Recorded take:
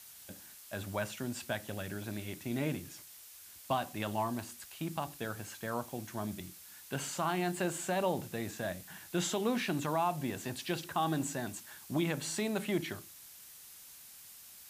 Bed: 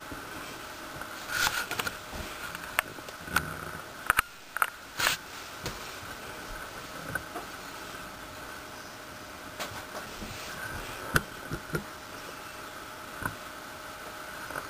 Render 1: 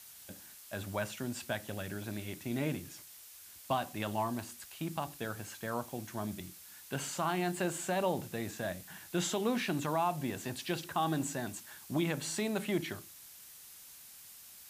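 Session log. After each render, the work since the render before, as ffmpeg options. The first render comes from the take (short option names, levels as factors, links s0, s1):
-af anull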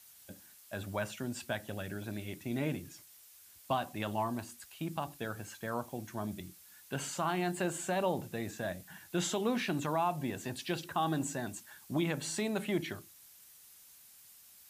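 -af "afftdn=nr=6:nf=-53"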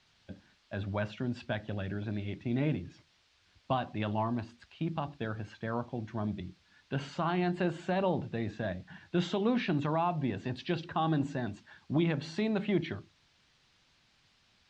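-af "lowpass=f=4400:w=0.5412,lowpass=f=4400:w=1.3066,lowshelf=f=270:g=7.5"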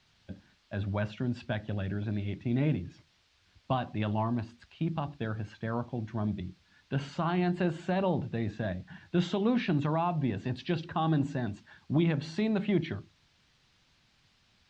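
-af "bass=f=250:g=4,treble=f=4000:g=0"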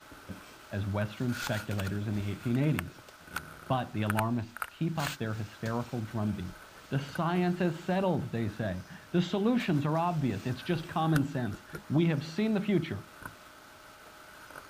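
-filter_complex "[1:a]volume=0.316[s0];[0:a][s0]amix=inputs=2:normalize=0"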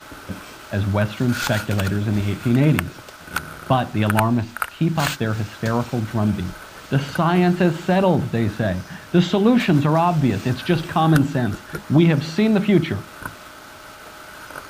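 -af "volume=3.98,alimiter=limit=0.708:level=0:latency=1"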